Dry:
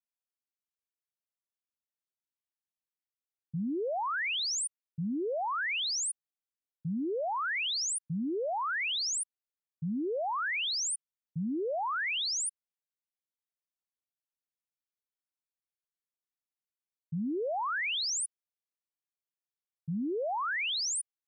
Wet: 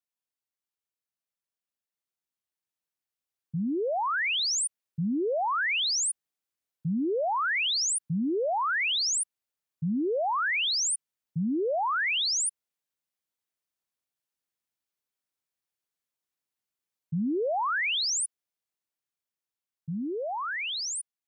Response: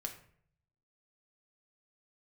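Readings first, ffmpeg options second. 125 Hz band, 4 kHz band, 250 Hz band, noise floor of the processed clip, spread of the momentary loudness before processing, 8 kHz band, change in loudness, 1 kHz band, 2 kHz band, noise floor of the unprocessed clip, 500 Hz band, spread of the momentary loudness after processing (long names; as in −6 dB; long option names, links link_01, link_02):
+4.5 dB, +4.5 dB, +4.5 dB, below −85 dBFS, 8 LU, +4.5 dB, +4.5 dB, +4.5 dB, +4.5 dB, below −85 dBFS, +4.5 dB, 9 LU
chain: -af "dynaudnorm=framelen=470:gausssize=13:maxgain=5dB,highpass=50"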